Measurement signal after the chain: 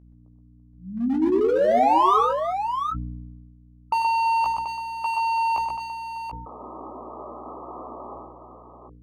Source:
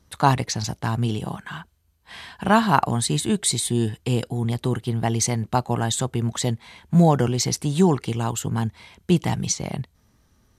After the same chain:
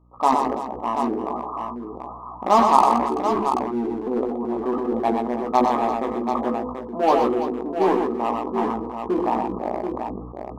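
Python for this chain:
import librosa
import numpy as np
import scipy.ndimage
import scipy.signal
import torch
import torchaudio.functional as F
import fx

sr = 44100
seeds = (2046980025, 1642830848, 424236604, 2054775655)

p1 = fx.brickwall_bandpass(x, sr, low_hz=210.0, high_hz=1300.0)
p2 = fx.hum_notches(p1, sr, base_hz=50, count=10)
p3 = fx.add_hum(p2, sr, base_hz=60, snr_db=28)
p4 = 10.0 ** (-23.0 / 20.0) * (np.abs((p3 / 10.0 ** (-23.0 / 20.0) + 3.0) % 4.0 - 2.0) - 1.0)
p5 = p3 + (p4 * librosa.db_to_amplitude(-8.0))
p6 = fx.rider(p5, sr, range_db=4, speed_s=2.0)
p7 = fx.low_shelf(p6, sr, hz=450.0, db=-7.5)
p8 = fx.doubler(p7, sr, ms=16.0, db=-6.0)
p9 = fx.echo_multitap(p8, sr, ms=(96, 97, 124, 336, 734), db=(-16.5, -17.0, -6.0, -14.0, -7.0))
p10 = fx.sustainer(p9, sr, db_per_s=38.0)
y = p10 * librosa.db_to_amplitude(2.0)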